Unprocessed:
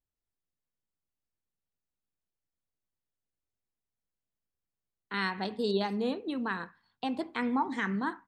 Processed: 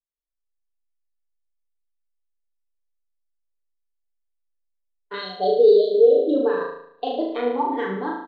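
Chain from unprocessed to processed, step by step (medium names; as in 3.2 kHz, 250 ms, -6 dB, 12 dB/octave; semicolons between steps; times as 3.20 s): local Wiener filter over 9 samples; compression, threshold -33 dBFS, peak gain reduction 9 dB; graphic EQ 125/250/500/1000/2000/4000 Hz -7/-11/+11/-4/-6/+5 dB; spectral selection erased 5.20–6.34 s, 770–2900 Hz; distance through air 62 m; comb 6.9 ms, depth 69%; flutter echo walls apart 6.3 m, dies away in 0.99 s; loudness maximiser +22 dB; spectral contrast expander 1.5:1; trim -4.5 dB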